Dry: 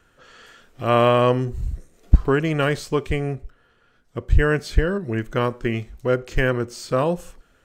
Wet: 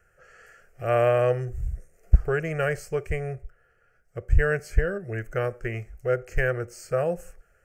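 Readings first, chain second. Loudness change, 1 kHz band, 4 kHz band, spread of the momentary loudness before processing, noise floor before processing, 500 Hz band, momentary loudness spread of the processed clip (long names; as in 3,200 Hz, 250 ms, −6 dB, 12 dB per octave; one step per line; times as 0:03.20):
−5.0 dB, −8.0 dB, −14.5 dB, 12 LU, −61 dBFS, −3.5 dB, 13 LU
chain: parametric band 3,600 Hz −13 dB 0.22 octaves
phaser with its sweep stopped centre 1,000 Hz, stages 6
level −2.5 dB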